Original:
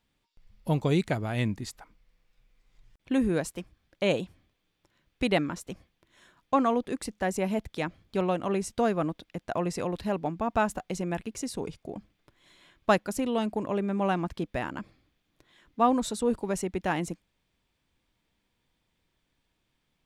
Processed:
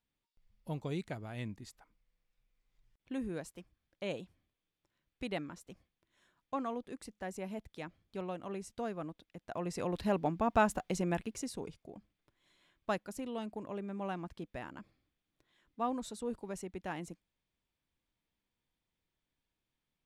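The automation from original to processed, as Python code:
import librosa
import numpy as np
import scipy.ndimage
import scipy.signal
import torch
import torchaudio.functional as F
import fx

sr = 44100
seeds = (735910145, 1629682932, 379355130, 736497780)

y = fx.gain(x, sr, db=fx.line((9.38, -13.0), (10.03, -2.0), (11.12, -2.0), (11.92, -12.0)))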